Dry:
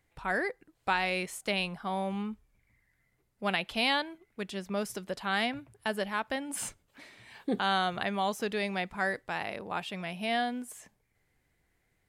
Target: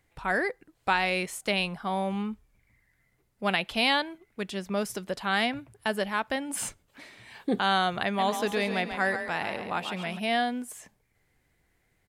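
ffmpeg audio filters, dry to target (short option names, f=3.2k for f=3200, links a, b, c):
-filter_complex "[0:a]asplit=3[a][b][c];[a]afade=t=out:st=8.17:d=0.02[d];[b]asplit=6[e][f][g][h][i][j];[f]adelay=138,afreqshift=30,volume=-8dB[k];[g]adelay=276,afreqshift=60,volume=-16dB[l];[h]adelay=414,afreqshift=90,volume=-23.9dB[m];[i]adelay=552,afreqshift=120,volume=-31.9dB[n];[j]adelay=690,afreqshift=150,volume=-39.8dB[o];[e][k][l][m][n][o]amix=inputs=6:normalize=0,afade=t=in:st=8.17:d=0.02,afade=t=out:st=10.18:d=0.02[p];[c]afade=t=in:st=10.18:d=0.02[q];[d][p][q]amix=inputs=3:normalize=0,volume=3.5dB"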